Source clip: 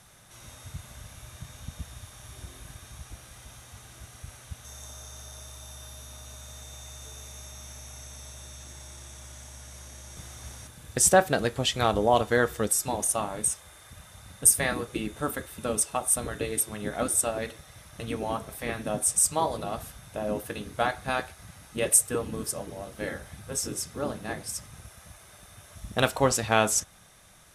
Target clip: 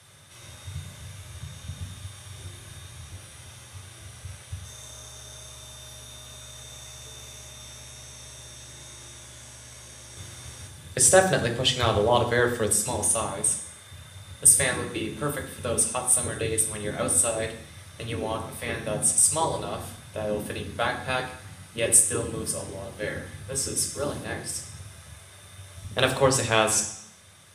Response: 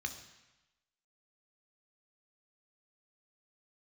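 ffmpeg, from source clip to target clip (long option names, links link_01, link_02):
-filter_complex "[0:a]asettb=1/sr,asplit=3[link_01][link_02][link_03];[link_01]atrim=end=23.764[link_04];[link_02]atrim=start=23.76:end=24.24,asetpts=PTS-STARTPTS,afade=type=in:duration=0.004:curve=qsin,afade=type=out:start_time=0.476:duration=0.004:curve=qsin,highshelf=frequency=5800:gain=7.5[link_05];[link_03]atrim=start=24.236[link_06];[link_04][link_05]acrossfade=duration=0.004:curve1=hsin:curve2=qsin[link_07];[link_07][link_06]acrossfade=duration=0.004:curve1=qsin:curve2=hsin[link_08];[1:a]atrim=start_sample=2205,asetrate=61740,aresample=44100[link_09];[link_08][link_09]afir=irnorm=-1:irlink=0,volume=5.5dB"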